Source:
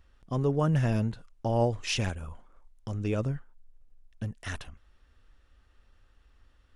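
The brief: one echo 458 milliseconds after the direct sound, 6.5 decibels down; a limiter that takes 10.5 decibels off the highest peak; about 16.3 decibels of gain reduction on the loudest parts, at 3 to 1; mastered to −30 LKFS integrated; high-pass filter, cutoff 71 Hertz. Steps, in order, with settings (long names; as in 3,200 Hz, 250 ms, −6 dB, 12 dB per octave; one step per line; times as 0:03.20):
high-pass filter 71 Hz
downward compressor 3 to 1, threshold −45 dBFS
brickwall limiter −39 dBFS
single-tap delay 458 ms −6.5 dB
level +19 dB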